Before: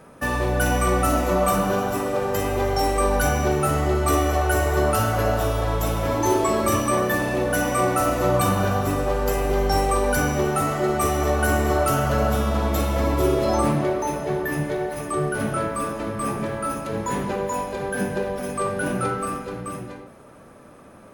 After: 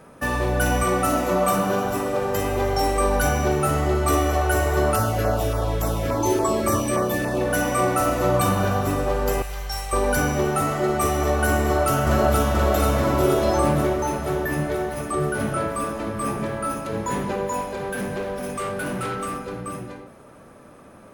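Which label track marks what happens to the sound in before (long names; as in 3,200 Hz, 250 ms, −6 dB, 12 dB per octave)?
0.830000	1.850000	high-pass filter 99 Hz
4.960000	7.410000	auto-filter notch saw down 3.5 Hz 800–3,700 Hz
9.420000	9.930000	guitar amp tone stack bass-middle-treble 10-0-10
11.580000	12.540000	delay throw 480 ms, feedback 70%, level −3 dB
17.610000	19.600000	hard clipping −24.5 dBFS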